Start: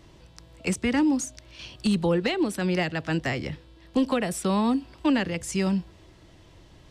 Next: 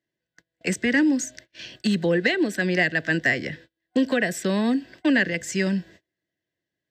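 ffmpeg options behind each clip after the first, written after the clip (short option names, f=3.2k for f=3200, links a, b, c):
-af "highpass=170,agate=range=-33dB:threshold=-48dB:ratio=16:detection=peak,superequalizer=9b=0.355:10b=0.398:11b=2.82:16b=0.251,volume=2.5dB"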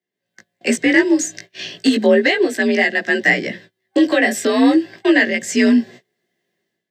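-af "afreqshift=50,dynaudnorm=f=110:g=5:m=13.5dB,flanger=delay=16.5:depth=2.1:speed=0.34,volume=1.5dB"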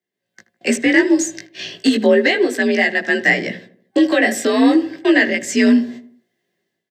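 -filter_complex "[0:a]asplit=2[a][b];[b]adelay=79,lowpass=f=1.4k:p=1,volume=-13.5dB,asplit=2[c][d];[d]adelay=79,lowpass=f=1.4k:p=1,volume=0.48,asplit=2[e][f];[f]adelay=79,lowpass=f=1.4k:p=1,volume=0.48,asplit=2[g][h];[h]adelay=79,lowpass=f=1.4k:p=1,volume=0.48,asplit=2[i][j];[j]adelay=79,lowpass=f=1.4k:p=1,volume=0.48[k];[a][c][e][g][i][k]amix=inputs=6:normalize=0"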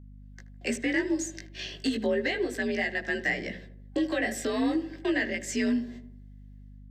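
-af "acompressor=threshold=-28dB:ratio=1.5,aeval=exprs='val(0)+0.0112*(sin(2*PI*50*n/s)+sin(2*PI*2*50*n/s)/2+sin(2*PI*3*50*n/s)/3+sin(2*PI*4*50*n/s)/4+sin(2*PI*5*50*n/s)/5)':c=same,volume=-7.5dB"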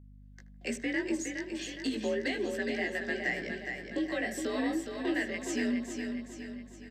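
-af "aecho=1:1:415|830|1245|1660|2075|2490:0.501|0.246|0.12|0.059|0.0289|0.0142,volume=-5dB"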